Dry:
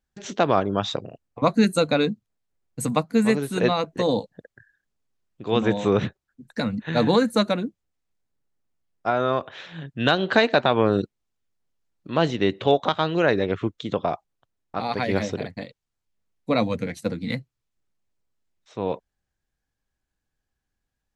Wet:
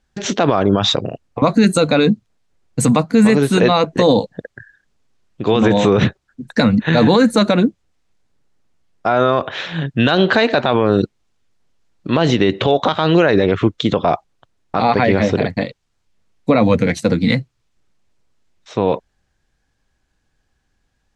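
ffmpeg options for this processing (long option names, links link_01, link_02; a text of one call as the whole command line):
ffmpeg -i in.wav -filter_complex "[0:a]asettb=1/sr,asplit=3[link_01][link_02][link_03];[link_01]atrim=end=14.824[link_04];[link_02]atrim=start=14.82:end=16.84,asetpts=PTS-STARTPTS,afade=type=in:duration=0.004:curve=qsin,afade=type=out:start_time=2.016:duration=0.004:curve=qsin,acrossover=split=3000[link_05][link_06];[link_06]acompressor=threshold=-47dB:ratio=4:attack=1:release=60[link_07];[link_05][link_07]amix=inputs=2:normalize=0[link_08];[link_03]atrim=start=16.836[link_09];[link_04][link_08]acrossfade=duration=0.004:curve1=hsin:curve2=qsin[link_10];[link_10][link_09]acrossfade=duration=0.004:curve1=qsin:curve2=hsin,lowpass=7700,alimiter=level_in=17dB:limit=-1dB:release=50:level=0:latency=1,volume=-2.5dB" out.wav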